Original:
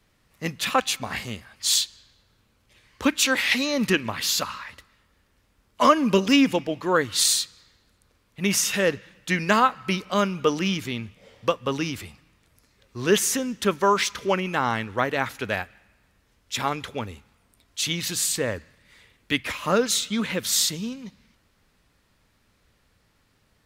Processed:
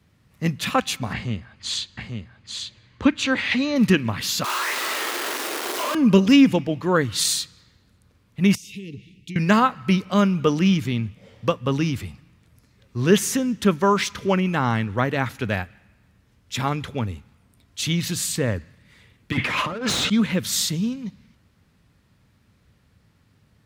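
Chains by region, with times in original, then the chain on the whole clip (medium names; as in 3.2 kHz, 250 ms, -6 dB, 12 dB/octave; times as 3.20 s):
1.13–3.76 s: distance through air 100 m + band-stop 5.4 kHz, Q 11 + delay 842 ms -5 dB
4.44–5.95 s: one-bit comparator + elliptic high-pass 340 Hz, stop band 70 dB + doubling 42 ms -3 dB
8.55–9.36 s: Chebyshev band-stop 430–2200 Hz, order 5 + treble shelf 9.1 kHz -7 dB + compression 16:1, threshold -36 dBFS
19.32–20.10 s: overdrive pedal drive 26 dB, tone 1.5 kHz, clips at -6.5 dBFS + compressor with a negative ratio -26 dBFS
whole clip: high-pass 84 Hz; tone controls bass +12 dB, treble -2 dB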